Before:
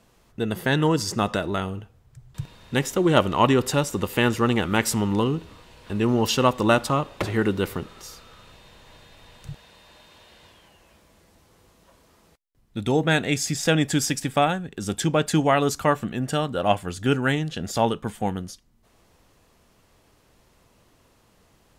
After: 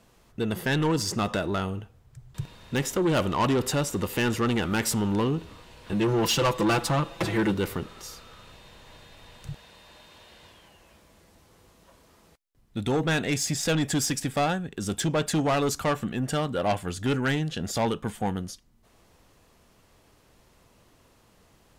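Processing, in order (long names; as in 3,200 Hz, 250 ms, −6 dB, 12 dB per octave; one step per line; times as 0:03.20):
0:05.92–0:07.54: comb filter 6 ms, depth 90%
soft clipping −19 dBFS, distortion −10 dB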